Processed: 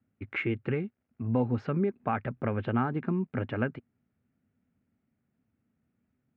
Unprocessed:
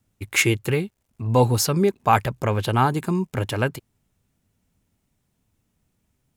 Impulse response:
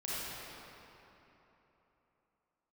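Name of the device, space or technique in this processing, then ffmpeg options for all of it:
bass amplifier: -af "acompressor=threshold=-20dB:ratio=3,highpass=88,equalizer=frequency=240:width_type=q:width=4:gain=9,equalizer=frequency=970:width_type=q:width=4:gain=-7,equalizer=frequency=1400:width_type=q:width=4:gain=3,lowpass=frequency=2300:width=0.5412,lowpass=frequency=2300:width=1.3066,volume=-6dB"

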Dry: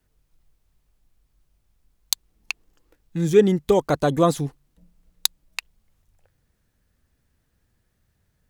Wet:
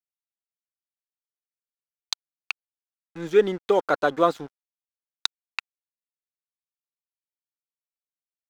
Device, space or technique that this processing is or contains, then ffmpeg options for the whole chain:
pocket radio on a weak battery: -af "highpass=380,lowpass=4100,aeval=exprs='sgn(val(0))*max(abs(val(0))-0.00596,0)':channel_layout=same,equalizer=frequency=1400:width_type=o:width=0.31:gain=8"

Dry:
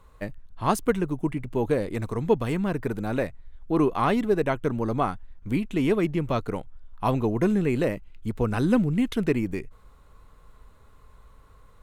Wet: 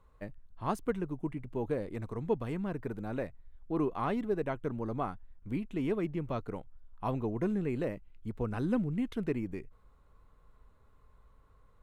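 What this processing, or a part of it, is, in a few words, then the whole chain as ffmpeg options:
behind a face mask: -af "highshelf=frequency=2700:gain=-8,volume=-9dB"

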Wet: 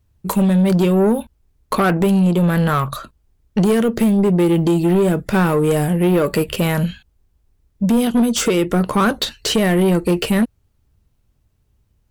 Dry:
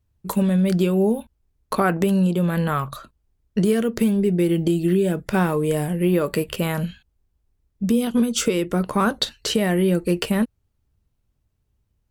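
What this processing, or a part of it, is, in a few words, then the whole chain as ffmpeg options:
saturation between pre-emphasis and de-emphasis: -af "highshelf=frequency=3400:gain=7.5,asoftclip=type=tanh:threshold=-18dB,highshelf=frequency=3400:gain=-7.5,volume=8dB"

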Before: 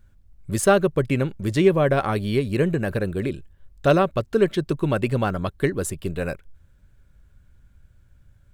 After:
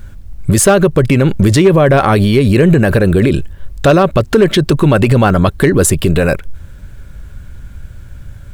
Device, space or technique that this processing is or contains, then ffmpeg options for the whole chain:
loud club master: -af "acompressor=threshold=-22dB:ratio=2,asoftclip=type=hard:threshold=-15.5dB,alimiter=level_in=24dB:limit=-1dB:release=50:level=0:latency=1,volume=-1dB"

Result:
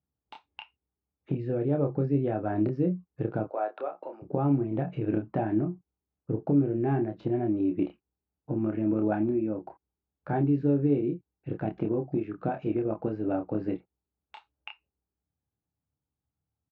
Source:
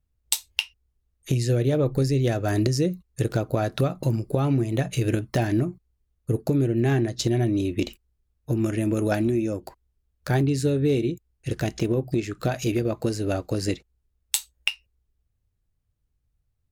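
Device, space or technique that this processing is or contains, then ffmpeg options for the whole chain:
bass cabinet: -filter_complex "[0:a]asettb=1/sr,asplit=3[link_01][link_02][link_03];[link_01]atrim=end=3.444[link_04];[link_02]atrim=start=3.44:end=4.22,asetpts=PTS-STARTPTS,afade=type=in:duration=0.004:curve=qsin,afade=type=out:start_time=0.776:duration=0.004:curve=qsin,highpass=frequency=470:width=0.5412,highpass=frequency=470:width=1.3066[link_05];[link_03]atrim=start=4.216[link_06];[link_04][link_05]acrossfade=duration=0.004:curve1=hsin:curve2=qsin[link_07];[link_07][link_06]acrossfade=duration=0.004:curve1=qsin:curve2=hsin,highpass=frequency=84:width=0.5412,highpass=frequency=84:width=1.3066,equalizer=frequency=100:width_type=q:width=4:gain=-7,equalizer=frequency=180:width_type=q:width=4:gain=3,equalizer=frequency=290:width_type=q:width=4:gain=6,equalizer=frequency=820:width_type=q:width=4:gain=8,equalizer=frequency=1900:width_type=q:width=4:gain=-9,lowpass=frequency=2000:width=0.5412,lowpass=frequency=2000:width=1.3066,asplit=2[link_08][link_09];[link_09]adelay=28,volume=-5dB[link_10];[link_08][link_10]amix=inputs=2:normalize=0,volume=-7dB"

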